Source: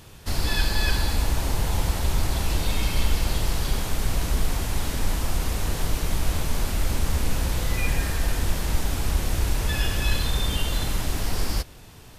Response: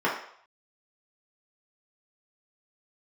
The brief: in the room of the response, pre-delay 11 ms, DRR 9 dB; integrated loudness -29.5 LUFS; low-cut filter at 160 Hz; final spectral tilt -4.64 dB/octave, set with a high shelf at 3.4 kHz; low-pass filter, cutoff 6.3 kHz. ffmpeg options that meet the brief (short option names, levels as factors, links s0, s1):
-filter_complex "[0:a]highpass=160,lowpass=6300,highshelf=f=3400:g=-9,asplit=2[s0][s1];[1:a]atrim=start_sample=2205,adelay=11[s2];[s1][s2]afir=irnorm=-1:irlink=0,volume=0.0668[s3];[s0][s3]amix=inputs=2:normalize=0,volume=1.5"